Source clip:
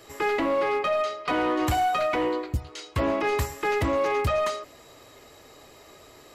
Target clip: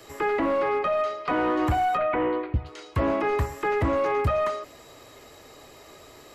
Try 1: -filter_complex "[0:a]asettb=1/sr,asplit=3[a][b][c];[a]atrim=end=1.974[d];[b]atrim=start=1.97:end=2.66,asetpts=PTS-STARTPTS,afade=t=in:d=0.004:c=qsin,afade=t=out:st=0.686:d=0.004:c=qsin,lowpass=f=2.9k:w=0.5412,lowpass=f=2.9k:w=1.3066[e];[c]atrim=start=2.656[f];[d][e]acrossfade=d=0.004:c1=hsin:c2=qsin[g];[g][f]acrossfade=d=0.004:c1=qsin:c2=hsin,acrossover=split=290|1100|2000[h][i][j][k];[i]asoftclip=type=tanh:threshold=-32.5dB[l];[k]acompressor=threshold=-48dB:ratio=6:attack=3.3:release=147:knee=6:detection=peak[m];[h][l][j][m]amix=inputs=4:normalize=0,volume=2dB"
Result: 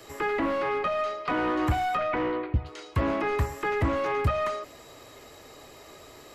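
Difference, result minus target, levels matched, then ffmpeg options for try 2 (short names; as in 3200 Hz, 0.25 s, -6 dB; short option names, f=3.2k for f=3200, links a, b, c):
soft clip: distortion +10 dB
-filter_complex "[0:a]asettb=1/sr,asplit=3[a][b][c];[a]atrim=end=1.974[d];[b]atrim=start=1.97:end=2.66,asetpts=PTS-STARTPTS,afade=t=in:d=0.004:c=qsin,afade=t=out:st=0.686:d=0.004:c=qsin,lowpass=f=2.9k:w=0.5412,lowpass=f=2.9k:w=1.3066[e];[c]atrim=start=2.656[f];[d][e]acrossfade=d=0.004:c1=hsin:c2=qsin[g];[g][f]acrossfade=d=0.004:c1=qsin:c2=hsin,acrossover=split=290|1100|2000[h][i][j][k];[i]asoftclip=type=tanh:threshold=-23.5dB[l];[k]acompressor=threshold=-48dB:ratio=6:attack=3.3:release=147:knee=6:detection=peak[m];[h][l][j][m]amix=inputs=4:normalize=0,volume=2dB"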